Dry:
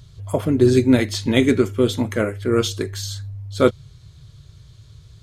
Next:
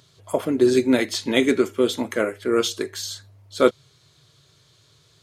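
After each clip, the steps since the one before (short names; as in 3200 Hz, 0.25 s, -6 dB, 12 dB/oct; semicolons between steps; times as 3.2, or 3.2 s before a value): HPF 290 Hz 12 dB/oct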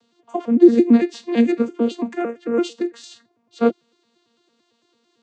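arpeggiated vocoder bare fifth, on A#3, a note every 0.112 s; gain +4 dB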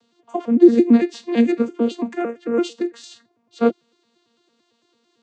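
nothing audible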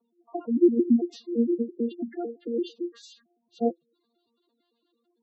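flange 0.57 Hz, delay 5.2 ms, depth 2.6 ms, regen +66%; spectral gate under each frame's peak -10 dB strong; gain -2.5 dB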